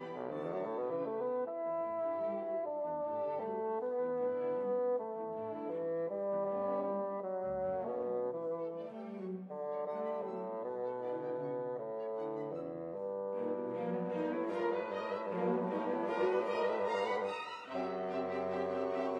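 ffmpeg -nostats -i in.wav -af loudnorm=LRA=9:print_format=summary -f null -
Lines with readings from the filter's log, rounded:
Input Integrated:    -37.4 LUFS
Input True Peak:     -20.9 dBTP
Input LRA:             4.1 LU
Input Threshold:     -47.4 LUFS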